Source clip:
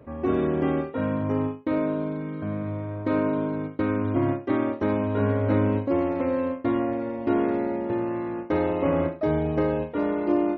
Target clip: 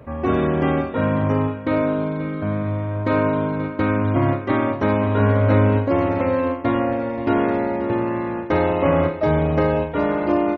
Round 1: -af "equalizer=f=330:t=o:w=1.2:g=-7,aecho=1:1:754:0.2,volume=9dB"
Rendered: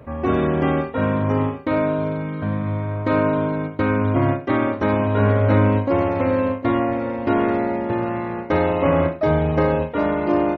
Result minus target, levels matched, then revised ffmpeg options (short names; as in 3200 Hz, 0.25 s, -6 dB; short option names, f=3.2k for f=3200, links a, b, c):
echo 0.223 s late
-af "equalizer=f=330:t=o:w=1.2:g=-7,aecho=1:1:531:0.2,volume=9dB"